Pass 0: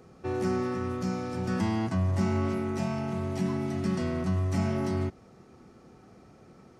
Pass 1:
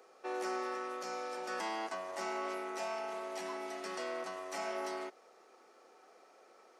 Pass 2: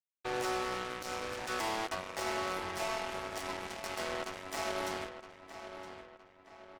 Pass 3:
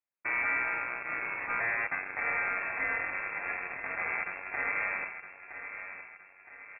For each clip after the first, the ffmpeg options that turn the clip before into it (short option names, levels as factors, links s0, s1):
-af "highpass=f=460:w=0.5412,highpass=f=460:w=1.3066,volume=0.841"
-filter_complex "[0:a]acrusher=bits=5:mix=0:aa=0.5,asplit=2[s0][s1];[s1]adelay=966,lowpass=f=3600:p=1,volume=0.316,asplit=2[s2][s3];[s3]adelay=966,lowpass=f=3600:p=1,volume=0.46,asplit=2[s4][s5];[s5]adelay=966,lowpass=f=3600:p=1,volume=0.46,asplit=2[s6][s7];[s7]adelay=966,lowpass=f=3600:p=1,volume=0.46,asplit=2[s8][s9];[s9]adelay=966,lowpass=f=3600:p=1,volume=0.46[s10];[s0][s2][s4][s6][s8][s10]amix=inputs=6:normalize=0,volume=1.33"
-af "lowpass=f=2300:t=q:w=0.5098,lowpass=f=2300:t=q:w=0.6013,lowpass=f=2300:t=q:w=0.9,lowpass=f=2300:t=q:w=2.563,afreqshift=-2700,volume=1.68"